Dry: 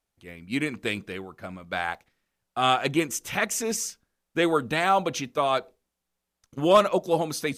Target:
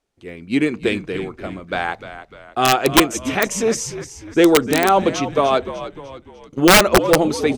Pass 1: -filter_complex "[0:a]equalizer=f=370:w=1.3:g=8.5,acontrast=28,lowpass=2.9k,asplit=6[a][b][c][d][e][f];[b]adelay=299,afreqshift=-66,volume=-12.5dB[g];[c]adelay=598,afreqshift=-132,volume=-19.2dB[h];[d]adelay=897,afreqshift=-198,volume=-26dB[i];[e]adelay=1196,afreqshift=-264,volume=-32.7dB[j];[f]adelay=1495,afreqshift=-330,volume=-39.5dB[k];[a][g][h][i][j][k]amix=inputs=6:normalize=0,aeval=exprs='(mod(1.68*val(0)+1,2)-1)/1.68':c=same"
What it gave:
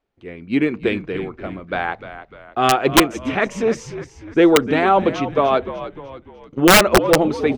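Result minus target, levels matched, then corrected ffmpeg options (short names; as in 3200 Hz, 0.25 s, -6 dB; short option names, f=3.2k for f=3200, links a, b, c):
8000 Hz band -2.5 dB
-filter_complex "[0:a]equalizer=f=370:w=1.3:g=8.5,acontrast=28,lowpass=8.2k,asplit=6[a][b][c][d][e][f];[b]adelay=299,afreqshift=-66,volume=-12.5dB[g];[c]adelay=598,afreqshift=-132,volume=-19.2dB[h];[d]adelay=897,afreqshift=-198,volume=-26dB[i];[e]adelay=1196,afreqshift=-264,volume=-32.7dB[j];[f]adelay=1495,afreqshift=-330,volume=-39.5dB[k];[a][g][h][i][j][k]amix=inputs=6:normalize=0,aeval=exprs='(mod(1.68*val(0)+1,2)-1)/1.68':c=same"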